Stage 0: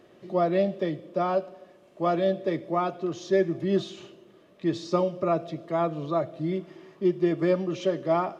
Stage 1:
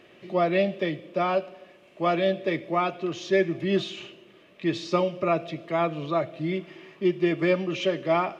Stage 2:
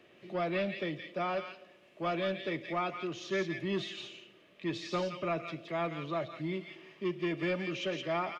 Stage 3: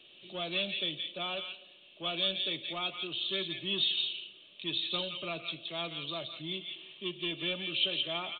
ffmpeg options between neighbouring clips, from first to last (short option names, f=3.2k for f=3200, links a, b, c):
-af "equalizer=f=2.5k:w=1.4:g=12.5"
-filter_complex "[0:a]acrossover=split=190|1300[a][b][c];[b]asoftclip=type=tanh:threshold=-22.5dB[d];[c]aecho=1:1:170:0.668[e];[a][d][e]amix=inputs=3:normalize=0,volume=-7dB"
-af "aexciter=amount=10.2:drive=9.8:freq=3.1k,volume=-6.5dB" -ar 8000 -c:a pcm_mulaw